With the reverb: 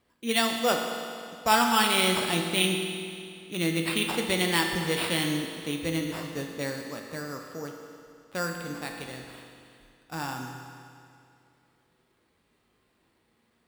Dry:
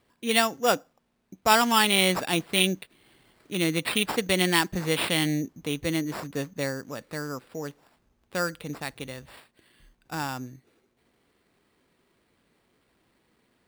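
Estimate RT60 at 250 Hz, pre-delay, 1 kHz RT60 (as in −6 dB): 2.4 s, 8 ms, 2.4 s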